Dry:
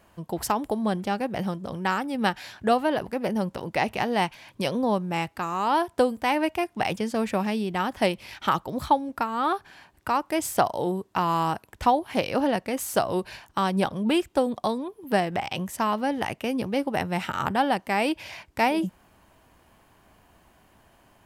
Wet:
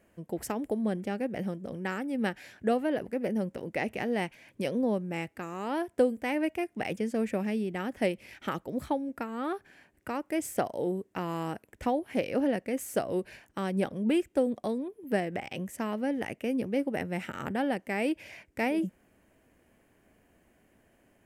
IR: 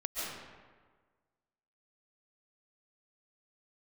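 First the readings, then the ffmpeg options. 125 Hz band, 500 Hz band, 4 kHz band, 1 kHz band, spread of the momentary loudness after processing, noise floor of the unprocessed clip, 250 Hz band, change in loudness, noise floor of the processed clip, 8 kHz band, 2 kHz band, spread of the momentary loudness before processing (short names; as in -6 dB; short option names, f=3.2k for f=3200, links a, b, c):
-5.5 dB, -4.0 dB, -11.0 dB, -12.0 dB, 8 LU, -61 dBFS, -3.0 dB, -5.5 dB, -67 dBFS, -7.5 dB, -6.5 dB, 6 LU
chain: -af "equalizer=f=250:t=o:w=1:g=6,equalizer=f=500:t=o:w=1:g=7,equalizer=f=1k:t=o:w=1:g=-9,equalizer=f=2k:t=o:w=1:g=7,equalizer=f=4k:t=o:w=1:g=-7,equalizer=f=8k:t=o:w=1:g=3,volume=-9dB"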